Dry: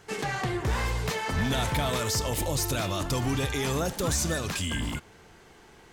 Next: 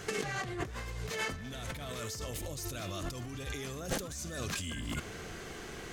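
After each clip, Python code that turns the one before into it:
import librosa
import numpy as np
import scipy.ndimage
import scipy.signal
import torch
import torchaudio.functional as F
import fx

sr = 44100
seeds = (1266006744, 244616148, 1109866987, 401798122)

y = fx.peak_eq(x, sr, hz=890.0, db=-11.5, octaves=0.22)
y = fx.over_compress(y, sr, threshold_db=-39.0, ratio=-1.0)
y = fx.peak_eq(y, sr, hz=6400.0, db=3.0, octaves=0.21)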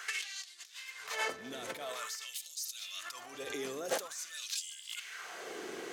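y = fx.filter_lfo_highpass(x, sr, shape='sine', hz=0.48, low_hz=330.0, high_hz=4700.0, q=1.7)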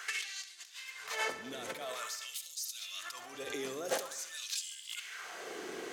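y = fx.echo_feedback(x, sr, ms=69, feedback_pct=58, wet_db=-14.5)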